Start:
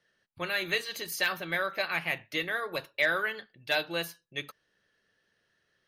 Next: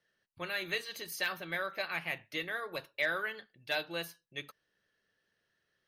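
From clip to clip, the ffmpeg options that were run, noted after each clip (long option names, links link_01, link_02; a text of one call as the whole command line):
ffmpeg -i in.wav -af "bandreject=frequency=7100:width=21,volume=-5.5dB" out.wav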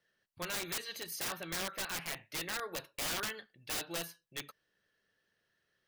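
ffmpeg -i in.wav -af "aeval=exprs='(mod(35.5*val(0)+1,2)-1)/35.5':channel_layout=same" out.wav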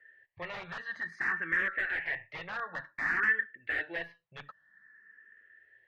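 ffmpeg -i in.wav -filter_complex "[0:a]asplit=2[link_01][link_02];[link_02]alimiter=level_in=17.5dB:limit=-24dB:level=0:latency=1:release=438,volume=-17.5dB,volume=3dB[link_03];[link_01][link_03]amix=inputs=2:normalize=0,lowpass=frequency=1800:width_type=q:width=11,asplit=2[link_04][link_05];[link_05]afreqshift=0.54[link_06];[link_04][link_06]amix=inputs=2:normalize=1,volume=-2dB" out.wav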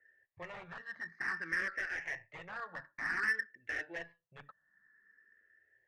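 ffmpeg -i in.wav -af "adynamicsmooth=sensitivity=4.5:basefreq=2100,volume=-5dB" out.wav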